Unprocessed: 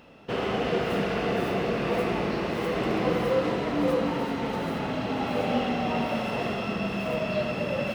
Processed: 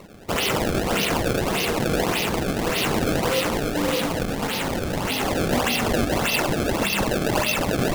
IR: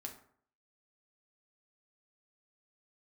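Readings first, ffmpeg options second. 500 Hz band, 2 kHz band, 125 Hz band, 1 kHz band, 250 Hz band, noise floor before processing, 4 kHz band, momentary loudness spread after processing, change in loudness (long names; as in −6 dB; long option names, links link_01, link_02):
+2.5 dB, +7.5 dB, +6.0 dB, +4.0 dB, +3.5 dB, −32 dBFS, +10.5 dB, 4 LU, +5.0 dB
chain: -af "aexciter=amount=7.4:drive=5.8:freq=2300,acrusher=samples=26:mix=1:aa=0.000001:lfo=1:lforange=41.6:lforate=1.7"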